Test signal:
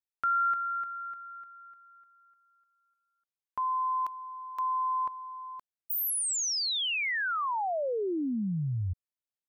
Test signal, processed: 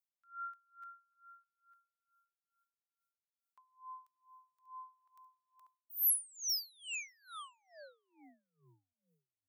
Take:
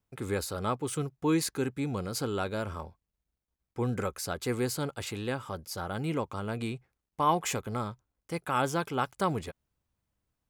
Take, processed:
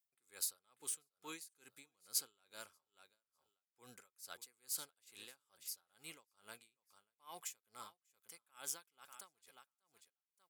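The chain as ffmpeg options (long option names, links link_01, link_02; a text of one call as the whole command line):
ffmpeg -i in.wav -af "aderivative,aecho=1:1:590|1180:0.168|0.0269,aeval=exprs='val(0)*pow(10,-31*(0.5-0.5*cos(2*PI*2.3*n/s))/20)':channel_layout=same" out.wav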